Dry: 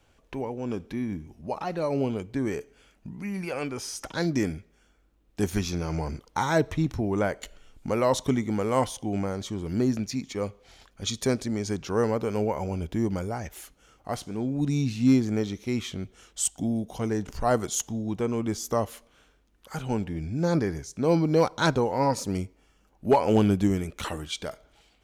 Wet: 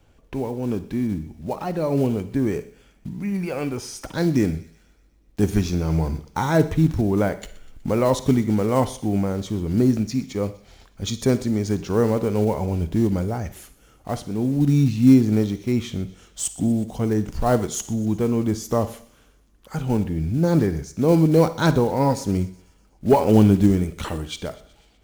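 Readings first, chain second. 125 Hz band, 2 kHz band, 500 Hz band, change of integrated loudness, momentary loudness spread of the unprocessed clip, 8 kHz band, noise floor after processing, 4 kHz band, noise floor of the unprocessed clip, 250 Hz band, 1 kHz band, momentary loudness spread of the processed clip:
+8.0 dB, +1.0 dB, +4.5 dB, +6.0 dB, 12 LU, +0.5 dB, -57 dBFS, +1.0 dB, -64 dBFS, +7.0 dB, +2.5 dB, 14 LU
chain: block floating point 5-bit; low shelf 490 Hz +8.5 dB; on a send: thin delay 0.123 s, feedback 60%, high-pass 2000 Hz, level -19 dB; on the sum: Schroeder reverb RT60 0.46 s, DRR 13.5 dB

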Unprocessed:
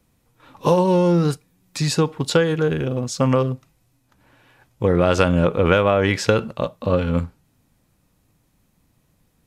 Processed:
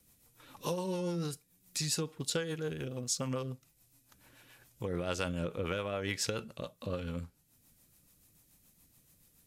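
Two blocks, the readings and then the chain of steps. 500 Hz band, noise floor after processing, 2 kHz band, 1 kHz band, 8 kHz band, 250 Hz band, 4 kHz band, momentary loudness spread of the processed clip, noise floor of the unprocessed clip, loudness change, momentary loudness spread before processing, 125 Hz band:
-18.5 dB, -70 dBFS, -16.0 dB, -19.5 dB, -4.5 dB, -18.0 dB, -10.0 dB, 9 LU, -65 dBFS, -16.5 dB, 9 LU, -17.5 dB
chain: compressor 1.5:1, threshold -45 dBFS, peak gain reduction 12 dB; pre-emphasis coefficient 0.8; rotary speaker horn 7 Hz; gain +8 dB

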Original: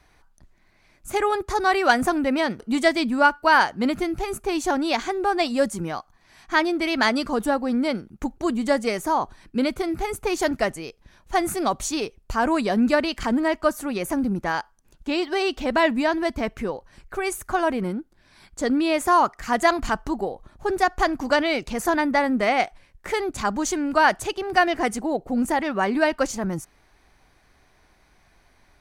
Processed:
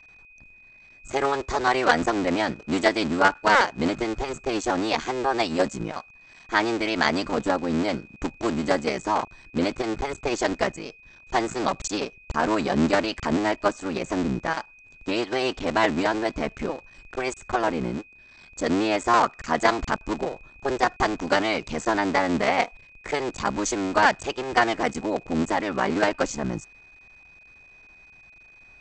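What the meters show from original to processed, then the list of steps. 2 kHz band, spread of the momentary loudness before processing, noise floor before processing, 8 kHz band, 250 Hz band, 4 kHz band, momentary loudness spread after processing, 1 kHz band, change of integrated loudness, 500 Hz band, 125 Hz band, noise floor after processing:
-1.5 dB, 10 LU, -60 dBFS, -2.0 dB, -2.5 dB, -1.0 dB, 10 LU, -1.5 dB, -1.5 dB, -1.5 dB, +3.0 dB, -52 dBFS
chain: cycle switcher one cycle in 3, muted; brick-wall FIR low-pass 8200 Hz; whine 2500 Hz -49 dBFS

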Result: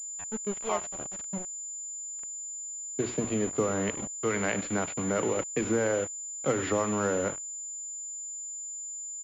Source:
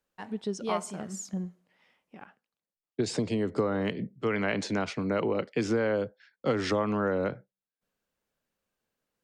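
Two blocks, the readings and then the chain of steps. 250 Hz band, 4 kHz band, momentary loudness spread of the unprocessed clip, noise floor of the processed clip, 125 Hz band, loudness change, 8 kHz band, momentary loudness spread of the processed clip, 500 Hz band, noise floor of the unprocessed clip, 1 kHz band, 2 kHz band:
-1.5 dB, -4.0 dB, 10 LU, -39 dBFS, -1.5 dB, -0.5 dB, +15.5 dB, 8 LU, 0.0 dB, under -85 dBFS, +0.5 dB, 0.0 dB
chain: notches 60/120/180/240/300/360 Hz; echo 98 ms -15.5 dB; sample gate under -33.5 dBFS; spectral noise reduction 6 dB; pulse-width modulation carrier 7100 Hz

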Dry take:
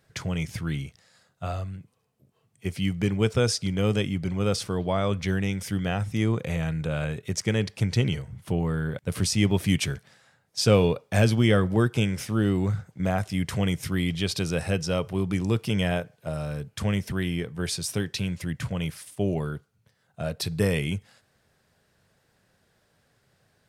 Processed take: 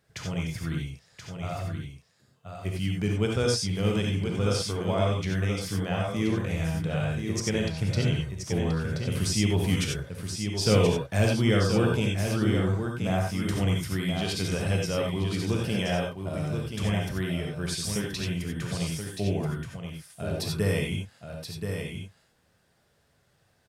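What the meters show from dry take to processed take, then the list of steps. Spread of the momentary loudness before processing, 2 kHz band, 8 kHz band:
11 LU, -1.0 dB, -0.5 dB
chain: on a send: echo 1.028 s -6.5 dB; on the sum: non-linear reverb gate 0.11 s rising, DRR 0.5 dB; gain -4.5 dB

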